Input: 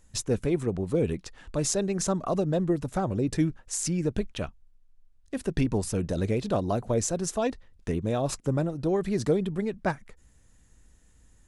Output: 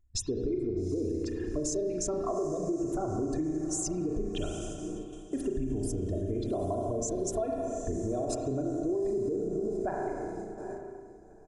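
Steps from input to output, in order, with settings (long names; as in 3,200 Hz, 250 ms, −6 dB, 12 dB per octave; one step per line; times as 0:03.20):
spectral envelope exaggerated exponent 2
0:09.10–0:09.76: elliptic low-pass filter 690 Hz
feedback delay with all-pass diffusion 820 ms, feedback 50%, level −14 dB
noise gate −41 dBFS, range −11 dB
convolution reverb RT60 1.5 s, pre-delay 33 ms, DRR 1 dB
brickwall limiter −18.5 dBFS, peak gain reduction 7 dB
comb filter 2.9 ms, depth 69%
downward compressor 3 to 1, threshold −30 dBFS, peak gain reduction 8.5 dB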